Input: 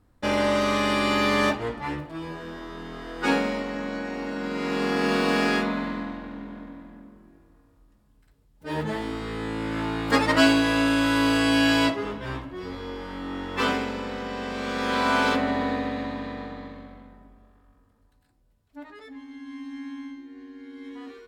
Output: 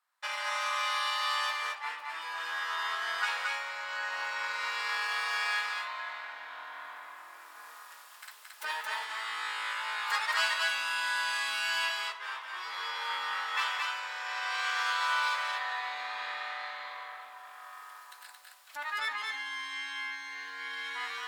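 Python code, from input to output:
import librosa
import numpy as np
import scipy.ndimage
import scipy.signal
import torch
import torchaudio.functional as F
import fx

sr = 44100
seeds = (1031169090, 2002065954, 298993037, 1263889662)

y = fx.recorder_agc(x, sr, target_db=-13.0, rise_db_per_s=14.0, max_gain_db=30)
y = scipy.signal.sosfilt(scipy.signal.butter(4, 1000.0, 'highpass', fs=sr, output='sos'), y)
y = y + 10.0 ** (-3.0 / 20.0) * np.pad(y, (int(223 * sr / 1000.0), 0))[:len(y)]
y = F.gain(torch.from_numpy(y), -6.5).numpy()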